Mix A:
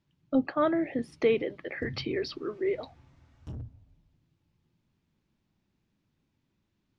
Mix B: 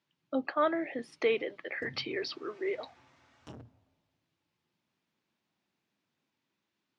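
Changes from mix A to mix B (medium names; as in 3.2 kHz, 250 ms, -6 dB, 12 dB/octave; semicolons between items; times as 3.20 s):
background +5.5 dB; master: add frequency weighting A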